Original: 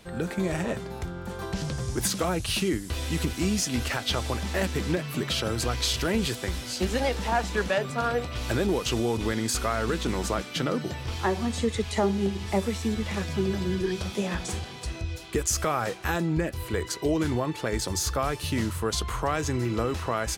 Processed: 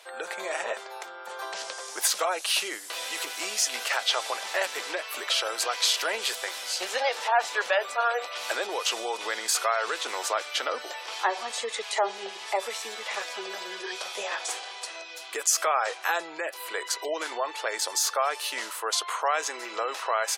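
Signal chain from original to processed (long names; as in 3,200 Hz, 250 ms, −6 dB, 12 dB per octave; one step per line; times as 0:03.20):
high-pass filter 580 Hz 24 dB per octave
gate on every frequency bin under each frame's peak −30 dB strong
level +3.5 dB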